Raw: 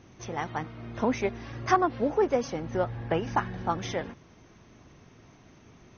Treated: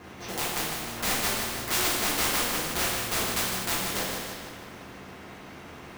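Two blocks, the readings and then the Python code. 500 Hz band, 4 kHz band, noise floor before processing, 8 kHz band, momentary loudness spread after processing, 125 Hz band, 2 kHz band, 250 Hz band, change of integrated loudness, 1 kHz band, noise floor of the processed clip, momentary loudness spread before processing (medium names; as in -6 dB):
-7.0 dB, +15.5 dB, -56 dBFS, no reading, 20 LU, -4.0 dB, +6.5 dB, -4.5 dB, +2.5 dB, -3.5 dB, -45 dBFS, 11 LU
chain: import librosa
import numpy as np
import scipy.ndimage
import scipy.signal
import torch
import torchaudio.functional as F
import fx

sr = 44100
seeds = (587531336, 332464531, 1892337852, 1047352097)

p1 = scipy.signal.sosfilt(scipy.signal.butter(4, 5400.0, 'lowpass', fs=sr, output='sos'), x)
p2 = fx.env_lowpass_down(p1, sr, base_hz=2500.0, full_db=-21.5)
p3 = scipy.signal.sosfilt(scipy.signal.butter(2, 130.0, 'highpass', fs=sr, output='sos'), p2)
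p4 = fx.high_shelf(p3, sr, hz=3500.0, db=-11.0)
p5 = fx.sample_hold(p4, sr, seeds[0], rate_hz=1200.0, jitter_pct=0)
p6 = p4 + F.gain(torch.from_numpy(p5), -7.0).numpy()
p7 = (np.mod(10.0 ** (20.5 / 20.0) * p6 + 1.0, 2.0) - 1.0) / 10.0 ** (20.5 / 20.0)
p8 = p7 + fx.echo_feedback(p7, sr, ms=154, feedback_pct=34, wet_db=-10, dry=0)
p9 = fx.rev_double_slope(p8, sr, seeds[1], early_s=0.7, late_s=2.0, knee_db=-17, drr_db=-8.0)
p10 = fx.spectral_comp(p9, sr, ratio=2.0)
y = F.gain(torch.from_numpy(p10), -6.5).numpy()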